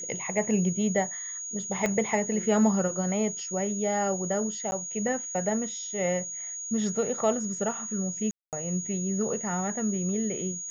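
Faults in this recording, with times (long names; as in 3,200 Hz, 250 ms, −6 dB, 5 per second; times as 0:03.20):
whistle 6,700 Hz −34 dBFS
0:01.86: click −14 dBFS
0:04.71–0:04.72: drop-out 10 ms
0:08.31–0:08.53: drop-out 218 ms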